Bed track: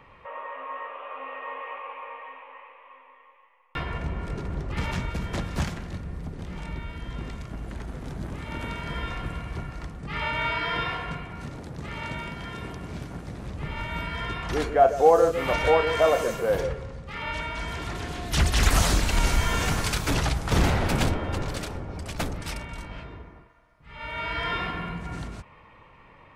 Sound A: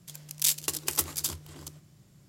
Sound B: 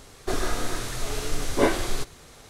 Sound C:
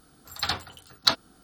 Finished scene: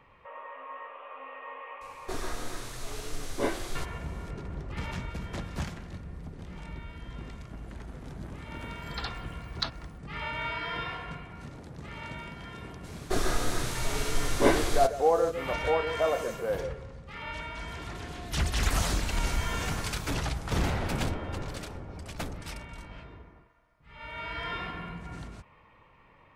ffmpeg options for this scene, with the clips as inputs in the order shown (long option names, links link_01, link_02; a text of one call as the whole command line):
ffmpeg -i bed.wav -i cue0.wav -i cue1.wav -i cue2.wav -filter_complex "[2:a]asplit=2[link_01][link_02];[0:a]volume=-6.5dB[link_03];[3:a]acrossover=split=6300[link_04][link_05];[link_05]acompressor=threshold=-53dB:ratio=4:attack=1:release=60[link_06];[link_04][link_06]amix=inputs=2:normalize=0[link_07];[link_01]atrim=end=2.49,asetpts=PTS-STARTPTS,volume=-8.5dB,afade=type=in:duration=0.004:curve=hsin,afade=type=out:start_time=2.486:duration=0.004:curve=hsin,adelay=1810[link_08];[link_07]atrim=end=1.43,asetpts=PTS-STARTPTS,volume=-10dB,afade=type=in:duration=0.004:curve=hsin,afade=type=out:start_time=1.426:duration=0.004:curve=hsin,adelay=8550[link_09];[link_02]atrim=end=2.49,asetpts=PTS-STARTPTS,volume=-1.5dB,afade=type=in:duration=0.02,afade=type=out:start_time=2.47:duration=0.02,adelay=12830[link_10];[link_03][link_08][link_09][link_10]amix=inputs=4:normalize=0" out.wav